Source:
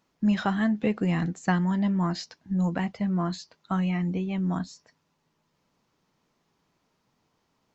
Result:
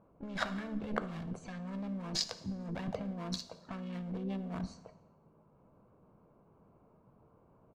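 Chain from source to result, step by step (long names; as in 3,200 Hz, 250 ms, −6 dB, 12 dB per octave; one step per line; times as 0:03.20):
adaptive Wiener filter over 25 samples
asymmetric clip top −26.5 dBFS
dynamic equaliser 230 Hz, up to −4 dB, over −37 dBFS, Q 1.8
comb filter 1.8 ms, depth 33%
compressor whose output falls as the input rises −41 dBFS, ratio −1
pitch-shifted copies added +5 semitones −9 dB
low-pass that shuts in the quiet parts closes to 1,400 Hz, open at −38.5 dBFS
dense smooth reverb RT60 0.94 s, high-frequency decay 0.85×, DRR 11 dB
level +1 dB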